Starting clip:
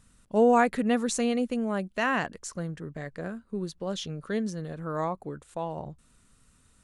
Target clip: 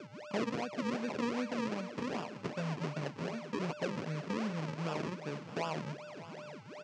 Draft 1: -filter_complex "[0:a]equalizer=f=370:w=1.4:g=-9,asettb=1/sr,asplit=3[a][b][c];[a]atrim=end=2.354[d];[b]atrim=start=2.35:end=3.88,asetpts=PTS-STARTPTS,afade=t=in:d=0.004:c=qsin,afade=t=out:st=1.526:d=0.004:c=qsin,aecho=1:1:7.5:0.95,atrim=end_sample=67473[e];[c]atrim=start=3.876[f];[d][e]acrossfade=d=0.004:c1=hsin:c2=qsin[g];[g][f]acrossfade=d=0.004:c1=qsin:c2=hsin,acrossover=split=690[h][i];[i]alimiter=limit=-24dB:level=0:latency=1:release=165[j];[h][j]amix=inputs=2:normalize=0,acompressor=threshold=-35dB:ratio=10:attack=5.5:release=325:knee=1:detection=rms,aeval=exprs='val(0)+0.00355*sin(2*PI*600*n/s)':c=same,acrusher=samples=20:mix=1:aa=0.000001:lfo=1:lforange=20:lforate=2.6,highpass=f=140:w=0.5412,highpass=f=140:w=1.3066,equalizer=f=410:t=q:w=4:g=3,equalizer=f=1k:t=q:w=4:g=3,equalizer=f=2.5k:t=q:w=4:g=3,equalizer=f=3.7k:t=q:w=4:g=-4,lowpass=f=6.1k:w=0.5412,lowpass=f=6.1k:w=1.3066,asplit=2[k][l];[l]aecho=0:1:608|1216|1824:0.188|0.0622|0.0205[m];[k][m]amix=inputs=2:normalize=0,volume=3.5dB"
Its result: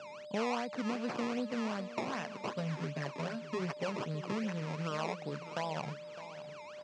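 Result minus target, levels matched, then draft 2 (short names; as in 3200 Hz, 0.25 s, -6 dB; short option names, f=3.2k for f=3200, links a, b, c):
decimation with a swept rate: distortion -7 dB
-filter_complex "[0:a]equalizer=f=370:w=1.4:g=-9,asettb=1/sr,asplit=3[a][b][c];[a]atrim=end=2.354[d];[b]atrim=start=2.35:end=3.88,asetpts=PTS-STARTPTS,afade=t=in:d=0.004:c=qsin,afade=t=out:st=1.526:d=0.004:c=qsin,aecho=1:1:7.5:0.95,atrim=end_sample=67473[e];[c]atrim=start=3.876[f];[d][e]acrossfade=d=0.004:c1=hsin:c2=qsin[g];[g][f]acrossfade=d=0.004:c1=qsin:c2=hsin,acrossover=split=690[h][i];[i]alimiter=limit=-24dB:level=0:latency=1:release=165[j];[h][j]amix=inputs=2:normalize=0,acompressor=threshold=-35dB:ratio=10:attack=5.5:release=325:knee=1:detection=rms,aeval=exprs='val(0)+0.00355*sin(2*PI*600*n/s)':c=same,acrusher=samples=42:mix=1:aa=0.000001:lfo=1:lforange=42:lforate=2.6,highpass=f=140:w=0.5412,highpass=f=140:w=1.3066,equalizer=f=410:t=q:w=4:g=3,equalizer=f=1k:t=q:w=4:g=3,equalizer=f=2.5k:t=q:w=4:g=3,equalizer=f=3.7k:t=q:w=4:g=-4,lowpass=f=6.1k:w=0.5412,lowpass=f=6.1k:w=1.3066,asplit=2[k][l];[l]aecho=0:1:608|1216|1824:0.188|0.0622|0.0205[m];[k][m]amix=inputs=2:normalize=0,volume=3.5dB"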